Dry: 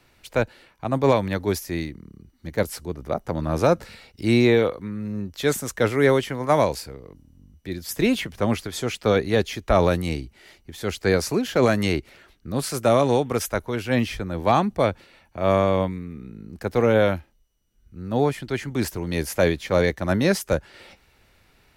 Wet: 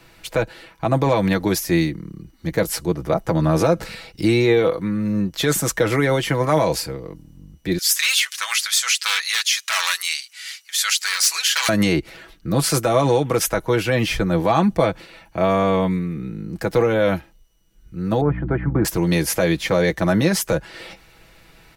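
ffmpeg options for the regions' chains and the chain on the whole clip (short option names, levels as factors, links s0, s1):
-filter_complex "[0:a]asettb=1/sr,asplit=3[s0][s1][s2];[s0]atrim=end=7.784[s3];[s1]atrim=start=7.78:end=11.69,asetpts=PTS-STARTPTS,afade=t=in:d=0.004:c=qsin,afade=t=out:st=3.906:d=0.004:c=qsin,equalizer=f=7100:w=0.38:g=13.5,aeval=exprs='0.251*(abs(mod(val(0)/0.251+3,4)-2)-1)':c=same,highpass=f=1300:w=0.5412,highpass=f=1300:w=1.3066[s4];[s2]atrim=start=11.686[s5];[s3][s4]acrossfade=d=0.004:c1=hsin:c2=qsin[s6];[s6][s5]acrossfade=d=0.004:c1=qsin:c2=hsin,asettb=1/sr,asplit=3[s7][s8][s9];[s7]atrim=end=18.214[s10];[s8]atrim=start=18.21:end=18.85,asetpts=PTS-STARTPTS,afade=t=in:d=0.004:c=qsin,afade=t=out:st=0.636:d=0.004:c=qsin,lowpass=f=1500:w=0.5412,lowpass=f=1500:w=1.3066,aeval=exprs='val(0)+0.0224*(sin(2*PI*60*n/s)+sin(2*PI*2*60*n/s)/2+sin(2*PI*3*60*n/s)/3+sin(2*PI*4*60*n/s)/4+sin(2*PI*5*60*n/s)/5)':c=same[s11];[s9]atrim=start=18.846[s12];[s10][s11]acrossfade=d=0.004:c1=hsin:c2=qsin[s13];[s13][s12]acrossfade=d=0.004:c1=qsin:c2=hsin,alimiter=limit=0.141:level=0:latency=1:release=80,aecho=1:1:6.1:0.58,volume=2.51"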